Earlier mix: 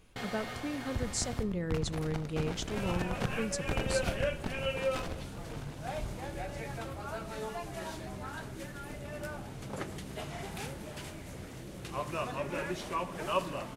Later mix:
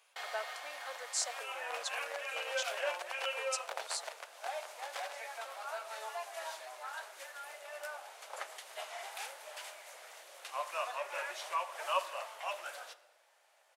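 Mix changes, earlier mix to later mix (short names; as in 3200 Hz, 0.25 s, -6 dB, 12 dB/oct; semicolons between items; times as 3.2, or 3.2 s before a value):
first sound: send -11.0 dB; second sound: entry -1.40 s; master: add steep high-pass 600 Hz 36 dB/oct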